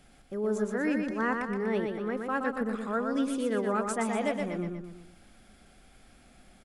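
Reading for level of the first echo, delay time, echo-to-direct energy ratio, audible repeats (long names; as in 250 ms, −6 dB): −4.5 dB, 121 ms, −3.5 dB, 4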